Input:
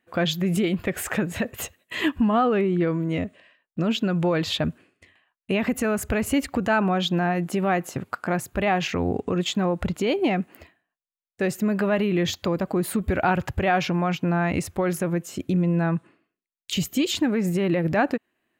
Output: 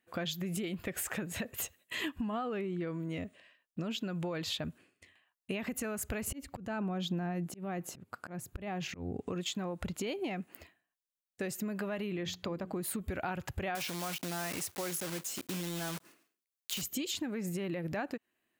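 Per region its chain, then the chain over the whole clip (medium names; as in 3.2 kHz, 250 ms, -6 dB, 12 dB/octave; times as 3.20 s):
6.27–9.21 s: bass shelf 480 Hz +11 dB + slow attack 527 ms
12.16–12.73 s: low-pass 3.5 kHz 6 dB/octave + hum notches 60/120/180/240/300/360/420/480 Hz
13.75–16.83 s: block-companded coder 3-bit + high-pass 290 Hz 6 dB/octave + transient shaper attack -2 dB, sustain +4 dB
whole clip: treble shelf 3.8 kHz +9 dB; compression 4:1, threshold -26 dBFS; trim -8 dB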